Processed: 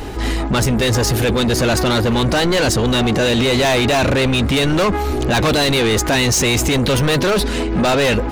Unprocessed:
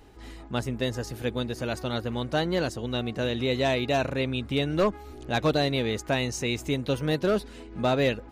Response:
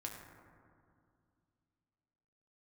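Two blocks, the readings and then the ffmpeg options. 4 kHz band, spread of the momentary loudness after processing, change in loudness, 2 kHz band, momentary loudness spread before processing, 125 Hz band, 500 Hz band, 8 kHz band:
+14.0 dB, 3 LU, +12.0 dB, +13.5 dB, 7 LU, +12.5 dB, +10.0 dB, +20.0 dB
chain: -af "apsyclip=33.5dB,asoftclip=type=tanh:threshold=-4dB,volume=-8dB"

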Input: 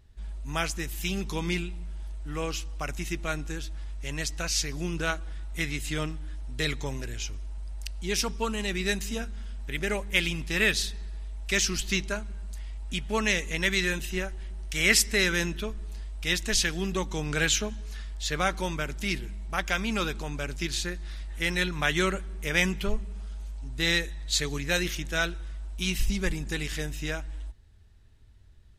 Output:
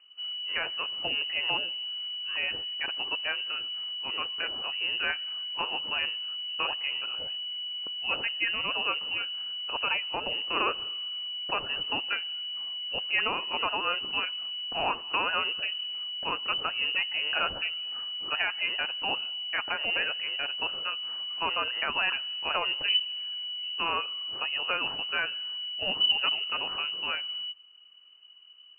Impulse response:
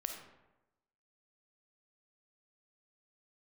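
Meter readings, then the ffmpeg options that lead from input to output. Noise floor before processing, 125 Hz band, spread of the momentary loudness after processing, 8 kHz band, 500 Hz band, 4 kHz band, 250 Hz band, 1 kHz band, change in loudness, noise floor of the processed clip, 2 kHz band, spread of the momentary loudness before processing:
-46 dBFS, -21.5 dB, 6 LU, under -40 dB, -7.0 dB, +6.5 dB, -15.0 dB, +3.5 dB, 0.0 dB, -46 dBFS, -1.5 dB, 14 LU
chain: -af "alimiter=limit=-16dB:level=0:latency=1:release=141,lowpass=f=2.6k:t=q:w=0.5098,lowpass=f=2.6k:t=q:w=0.6013,lowpass=f=2.6k:t=q:w=0.9,lowpass=f=2.6k:t=q:w=2.563,afreqshift=-3000"

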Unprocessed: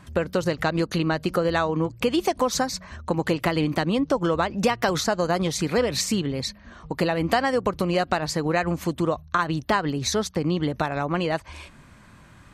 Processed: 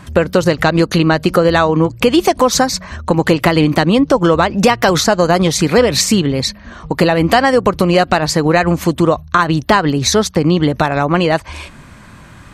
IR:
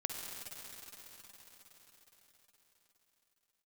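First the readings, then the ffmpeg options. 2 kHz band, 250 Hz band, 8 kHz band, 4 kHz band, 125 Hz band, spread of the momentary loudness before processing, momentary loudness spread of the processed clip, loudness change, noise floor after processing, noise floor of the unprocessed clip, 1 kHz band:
+11.0 dB, +11.5 dB, +11.5 dB, +11.5 dB, +11.5 dB, 4 LU, 5 LU, +11.0 dB, -38 dBFS, -50 dBFS, +11.0 dB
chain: -af "apsyclip=13.5dB,volume=-2dB"

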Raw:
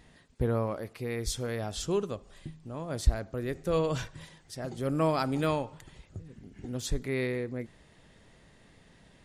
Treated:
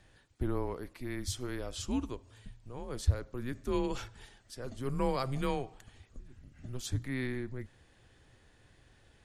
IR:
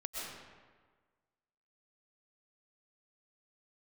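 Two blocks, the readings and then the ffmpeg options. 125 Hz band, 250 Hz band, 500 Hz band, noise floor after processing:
-3.0 dB, -3.0 dB, -7.0 dB, -64 dBFS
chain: -af "afreqshift=-130,volume=-4dB"

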